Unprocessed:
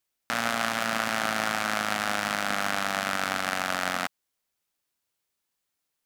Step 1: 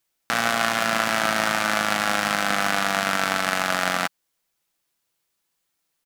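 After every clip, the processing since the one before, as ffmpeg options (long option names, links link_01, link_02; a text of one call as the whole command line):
ffmpeg -i in.wav -af "aecho=1:1:6:0.32,volume=5dB" out.wav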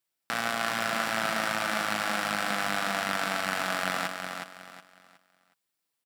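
ffmpeg -i in.wav -filter_complex "[0:a]highpass=72,bandreject=frequency=6400:width=12,asplit=2[link_01][link_02];[link_02]aecho=0:1:367|734|1101|1468:0.501|0.15|0.0451|0.0135[link_03];[link_01][link_03]amix=inputs=2:normalize=0,volume=-7.5dB" out.wav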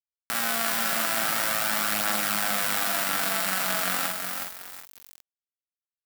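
ffmpeg -i in.wav -filter_complex "[0:a]acrusher=bits=6:mix=0:aa=0.000001,aemphasis=mode=production:type=50fm,asplit=2[link_01][link_02];[link_02]adelay=48,volume=-3dB[link_03];[link_01][link_03]amix=inputs=2:normalize=0,volume=-2dB" out.wav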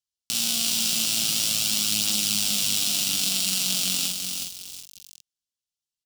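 ffmpeg -i in.wav -af "firequalizer=gain_entry='entry(110,0);entry(630,-19);entry(1800,-25);entry(2800,1);entry(5600,5);entry(14000,-7)':delay=0.05:min_phase=1,volume=5.5dB" out.wav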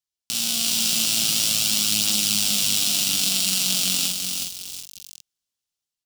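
ffmpeg -i in.wav -af "dynaudnorm=framelen=240:gausssize=5:maxgain=5.5dB" out.wav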